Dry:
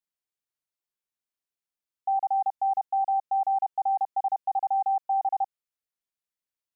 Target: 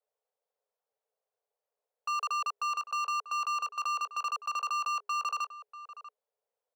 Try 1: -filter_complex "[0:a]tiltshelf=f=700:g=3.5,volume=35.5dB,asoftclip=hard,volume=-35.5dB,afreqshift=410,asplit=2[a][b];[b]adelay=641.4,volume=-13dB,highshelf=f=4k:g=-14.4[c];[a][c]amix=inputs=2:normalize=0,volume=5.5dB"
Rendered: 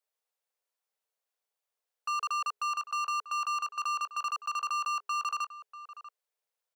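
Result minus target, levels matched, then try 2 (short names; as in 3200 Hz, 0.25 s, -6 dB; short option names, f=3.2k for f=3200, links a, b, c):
500 Hz band -6.5 dB
-filter_complex "[0:a]tiltshelf=f=700:g=13.5,volume=35.5dB,asoftclip=hard,volume=-35.5dB,afreqshift=410,asplit=2[a][b];[b]adelay=641.4,volume=-13dB,highshelf=f=4k:g=-14.4[c];[a][c]amix=inputs=2:normalize=0,volume=5.5dB"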